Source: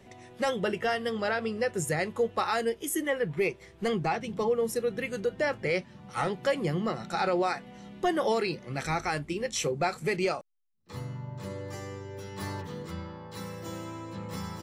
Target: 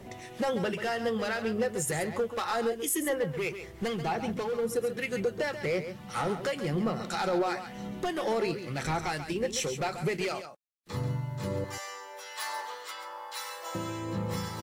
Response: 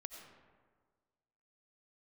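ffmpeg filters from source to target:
-filter_complex "[0:a]asettb=1/sr,asplit=3[a][b][c];[a]atrim=end=11.644[d];[b]atrim=start=11.64:end=13.75,asetpts=PTS-STARTPTS,afade=t=in:d=0.004:c=qsin,afade=t=out:st=2.106:d=0.004:c=qsin,highpass=f=680:w=0.5412,highpass=f=680:w=1.3066[e];[c]atrim=start=13.746[f];[d][e]acrossfade=d=0.004:c1=hsin:c2=qsin[g];[g][f]acrossfade=d=0.004:c1=qsin:c2=hsin,acompressor=threshold=-38dB:ratio=2,volume=31dB,asoftclip=hard,volume=-31dB,acrossover=split=1400[h][i];[h]aeval=exprs='val(0)*(1-0.5/2+0.5/2*cos(2*PI*1.9*n/s))':c=same[j];[i]aeval=exprs='val(0)*(1-0.5/2-0.5/2*cos(2*PI*1.9*n/s))':c=same[k];[j][k]amix=inputs=2:normalize=0,acrusher=bits=11:mix=0:aa=0.000001,aecho=1:1:136:0.316,volume=8.5dB" -ar 44100 -c:a libvorbis -b:a 64k

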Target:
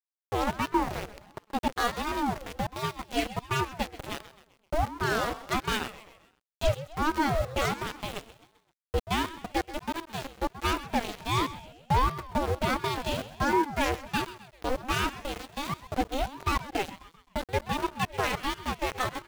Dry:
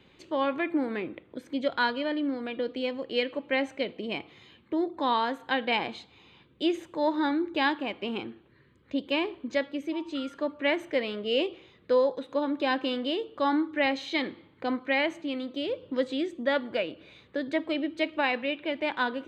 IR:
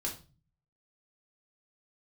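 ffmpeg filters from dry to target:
-af "aeval=exprs='val(0)*gte(abs(val(0)),0.0376)':c=same,aeval=exprs='0.211*(cos(1*acos(clip(val(0)/0.211,-1,1)))-cos(1*PI/2))+0.075*(cos(5*acos(clip(val(0)/0.211,-1,1)))-cos(5*PI/2))+0.0531*(cos(7*acos(clip(val(0)/0.211,-1,1)))-cos(7*PI/2))':c=same,lowshelf=f=390:g=7,aecho=1:1:130|260|390|520:0.178|0.0836|0.0393|0.0185,aeval=exprs='val(0)*sin(2*PI*430*n/s+430*0.55/1.4*sin(2*PI*1.4*n/s))':c=same,volume=-3dB"

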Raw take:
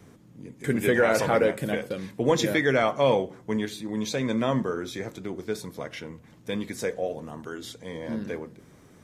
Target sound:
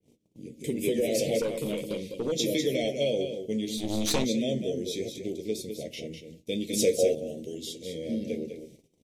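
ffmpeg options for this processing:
-filter_complex "[0:a]asuperstop=centerf=1200:order=8:qfactor=0.64,asplit=2[a][b];[b]adelay=13,volume=-11dB[c];[a][c]amix=inputs=2:normalize=0,acompressor=threshold=-24dB:ratio=6,aecho=1:1:202:0.422,agate=range=-22dB:threshold=-49dB:ratio=16:detection=peak,equalizer=f=82:t=o:w=2.3:g=-7,asplit=3[d][e][f];[d]afade=t=out:st=3.77:d=0.02[g];[e]aeval=exprs='0.119*(cos(1*acos(clip(val(0)/0.119,-1,1)))-cos(1*PI/2))+0.0422*(cos(4*acos(clip(val(0)/0.119,-1,1)))-cos(4*PI/2))':c=same,afade=t=in:st=3.77:d=0.02,afade=t=out:st=4.23:d=0.02[h];[f]afade=t=in:st=4.23:d=0.02[i];[g][h][i]amix=inputs=3:normalize=0,flanger=delay=8.6:depth=2.4:regen=-63:speed=0.71:shape=triangular,asettb=1/sr,asplit=3[j][k][l];[j]atrim=end=1.414[m];[k]atrim=start=1.41:end=2.32,asetpts=PTS-STARTPTS,afade=t=in:d=0.004:c=qsin,afade=t=out:st=0.906:d=0.004:c=qsin,aeval=exprs='(tanh(25.1*val(0)+0.2)-tanh(0.2))/25.1':c=same[n];[l]atrim=start=2.316[o];[m][n]acrossfade=d=0.004:c1=hsin:c2=qsin[p];[p][o]acrossfade=d=0.004:c1=qsin:c2=hsin,asettb=1/sr,asplit=3[q][r][s];[q]atrim=end=6.734[t];[r]atrim=start=6.73:end=7.15,asetpts=PTS-STARTPTS,afade=t=in:d=0.004:c=qsin,afade=t=out:st=0.416:d=0.004:c=qsin,acontrast=51[u];[s]atrim=start=7.146[v];[t][u]acrossfade=d=0.004:c1=hsin:c2=qsin[w];[w][v]acrossfade=d=0.004:c1=qsin:c2=hsin,adynamicequalizer=threshold=0.00631:dfrequency=3300:dqfactor=0.7:tfrequency=3300:tqfactor=0.7:attack=5:release=100:ratio=0.375:range=2:mode=boostabove:tftype=highshelf,volume=5.5dB"

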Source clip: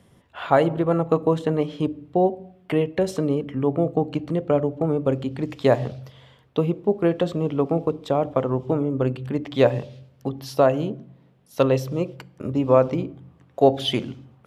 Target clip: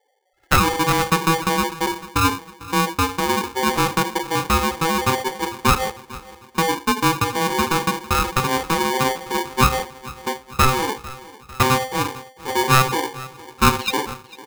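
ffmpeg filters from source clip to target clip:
-filter_complex "[0:a]aeval=exprs='val(0)+0.5*0.0794*sgn(val(0))':c=same,afftfilt=real='re*gte(hypot(re,im),0.178)':imag='im*gte(hypot(re,im),0.178)':win_size=1024:overlap=0.75,agate=range=-36dB:threshold=-23dB:ratio=16:detection=peak,bandreject=f=60:t=h:w=6,bandreject=f=120:t=h:w=6,bandreject=f=180:t=h:w=6,bandreject=f=240:t=h:w=6,bandreject=f=300:t=h:w=6,bandreject=f=360:t=h:w=6,bandreject=f=420:t=h:w=6,asplit=2[a][b];[b]aecho=0:1:449|898|1347|1796|2245:0.112|0.0651|0.0377|0.0219|0.0127[c];[a][c]amix=inputs=2:normalize=0,aeval=exprs='val(0)*sgn(sin(2*PI*650*n/s))':c=same"

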